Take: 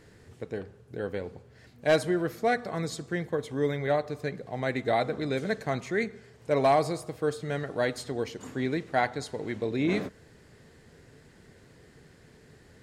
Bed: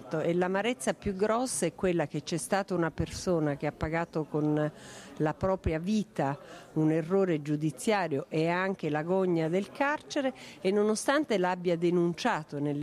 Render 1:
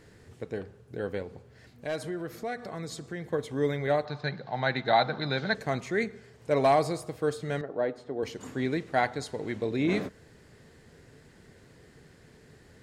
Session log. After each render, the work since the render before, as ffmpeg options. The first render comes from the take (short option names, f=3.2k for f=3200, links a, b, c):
-filter_complex "[0:a]asettb=1/sr,asplit=3[a][b][c];[a]atrim=end=1.224[d];[b]atrim=start=1.22:end=3.31,asetpts=PTS-STARTPTS,afade=t=in:d=0.004:c=qsin,afade=t=out:st=2.086:d=0.004:c=qsin,acompressor=threshold=-37dB:ratio=2:attack=3.2:release=140:knee=1:detection=peak[e];[c]atrim=start=3.306[f];[d][e]acrossfade=d=0.004:c1=hsin:c2=qsin[g];[g][f]acrossfade=d=0.004:c1=qsin:c2=hsin,asettb=1/sr,asplit=3[h][i][j];[h]atrim=end=4.054[k];[i]atrim=start=4.05:end=5.55,asetpts=PTS-STARTPTS,afade=t=in:d=0.004:c=qsin,afade=t=out:st=1.496:d=0.004:c=qsin,highpass=140,equalizer=f=140:t=q:w=4:g=7,equalizer=f=290:t=q:w=4:g=-5,equalizer=f=440:t=q:w=4:g=-6,equalizer=f=860:t=q:w=4:g=10,equalizer=f=1.5k:t=q:w=4:g=8,equalizer=f=4k:t=q:w=4:g=10,lowpass=f=5.3k:w=0.5412,lowpass=f=5.3k:w=1.3066[l];[j]atrim=start=5.546[m];[k][l]acrossfade=d=0.004:c1=hsin:c2=qsin[n];[n][m]acrossfade=d=0.004:c1=qsin:c2=hsin,asettb=1/sr,asplit=3[o][p][q];[o]atrim=end=7.614[r];[p]atrim=start=7.61:end=8.23,asetpts=PTS-STARTPTS,afade=t=in:d=0.004:c=qsin,afade=t=out:st=0.616:d=0.004:c=qsin,bandpass=f=480:t=q:w=0.76[s];[q]atrim=start=8.226[t];[r][s]acrossfade=d=0.004:c1=hsin:c2=qsin[u];[u][t]acrossfade=d=0.004:c1=qsin:c2=hsin"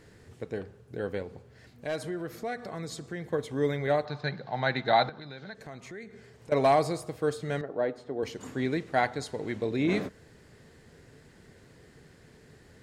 -filter_complex "[0:a]asettb=1/sr,asplit=3[a][b][c];[a]atrim=end=5.094[d];[b]atrim=start=5.09:end=6.52,asetpts=PTS-STARTPTS,afade=t=in:d=0.004:c=qsin,afade=t=out:st=1.426:d=0.004:c=qsin,acompressor=threshold=-44dB:ratio=3:attack=3.2:release=140:knee=1:detection=peak[e];[c]atrim=start=6.516[f];[d][e]acrossfade=d=0.004:c1=hsin:c2=qsin[g];[g][f]acrossfade=d=0.004:c1=qsin:c2=hsin"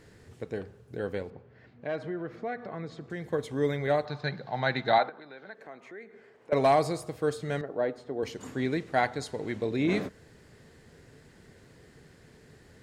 -filter_complex "[0:a]asettb=1/sr,asplit=3[a][b][c];[a]atrim=end=1.304[d];[b]atrim=start=1.3:end=3.1,asetpts=PTS-STARTPTS,afade=t=in:d=0.004:c=qsin,afade=t=out:st=1.796:d=0.004:c=qsin,highpass=100,lowpass=2.4k[e];[c]atrim=start=3.096[f];[d][e]acrossfade=d=0.004:c1=hsin:c2=qsin[g];[g][f]acrossfade=d=0.004:c1=qsin:c2=hsin,asettb=1/sr,asplit=3[h][i][j];[h]atrim=end=4.984[k];[i]atrim=start=4.98:end=6.53,asetpts=PTS-STARTPTS,afade=t=in:d=0.004:c=qsin,afade=t=out:st=1.546:d=0.004:c=qsin,acrossover=split=250 2700:gain=0.0631 1 0.178[l][m][n];[l][m][n]amix=inputs=3:normalize=0[o];[j]atrim=start=6.526[p];[k][o]acrossfade=d=0.004:c1=hsin:c2=qsin[q];[q][p]acrossfade=d=0.004:c1=qsin:c2=hsin"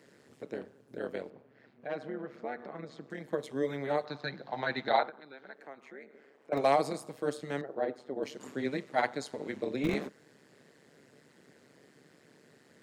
-filter_complex "[0:a]tremolo=f=140:d=0.857,acrossover=split=140|760|2000[a][b][c][d];[a]acrusher=bits=5:mix=0:aa=0.000001[e];[e][b][c][d]amix=inputs=4:normalize=0"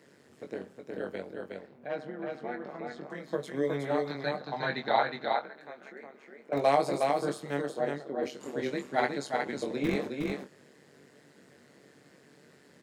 -filter_complex "[0:a]asplit=2[a][b];[b]adelay=21,volume=-6dB[c];[a][c]amix=inputs=2:normalize=0,asplit=2[d][e];[e]aecho=0:1:364:0.668[f];[d][f]amix=inputs=2:normalize=0"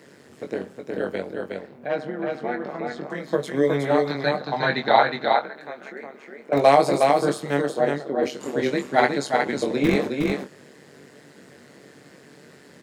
-af "volume=9.5dB,alimiter=limit=-2dB:level=0:latency=1"